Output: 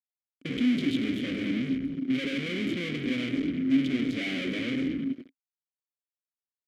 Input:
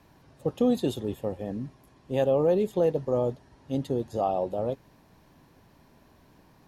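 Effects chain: gate -46 dBFS, range -17 dB; bell 140 Hz +12 dB 1.6 oct; de-hum 66.42 Hz, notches 10; on a send: frequency-shifting echo 0.101 s, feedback 58%, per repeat -96 Hz, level -15.5 dB; on the sum: fuzz box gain 51 dB, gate -55 dBFS; vowel filter i; low shelf 340 Hz -4 dB

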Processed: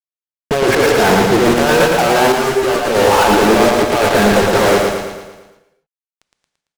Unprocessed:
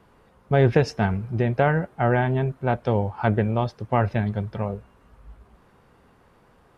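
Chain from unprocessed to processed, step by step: Chebyshev band-pass 340–1500 Hz, order 2; negative-ratio compressor -32 dBFS, ratio -1; fuzz box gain 49 dB, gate -43 dBFS; on a send: feedback echo 0.113 s, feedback 53%, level -3 dB; on the sum: non-linear reverb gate 0.29 s flat, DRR 10.5 dB; 2.32–2.95 ensemble effect; gain +2.5 dB

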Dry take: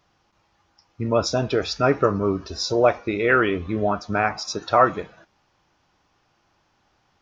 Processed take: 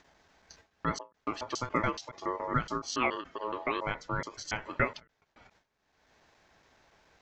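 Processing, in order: slices in reverse order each 0.141 s, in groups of 3; gate with hold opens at -46 dBFS; upward compressor, threshold -27 dBFS; ring modulator 750 Hz; ending taper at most 260 dB/s; gain -8 dB

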